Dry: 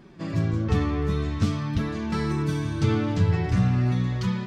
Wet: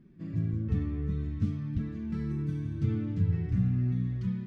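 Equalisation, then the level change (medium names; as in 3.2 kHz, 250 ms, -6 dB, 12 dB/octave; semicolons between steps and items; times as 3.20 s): FFT filter 240 Hz 0 dB, 830 Hz -20 dB, 1.9 kHz -11 dB, 4.4 kHz -18 dB; -5.5 dB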